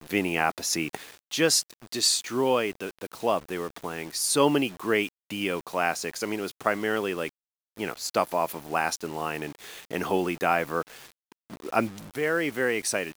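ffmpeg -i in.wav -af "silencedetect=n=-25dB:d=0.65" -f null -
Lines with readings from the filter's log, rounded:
silence_start: 10.81
silence_end: 11.66 | silence_duration: 0.85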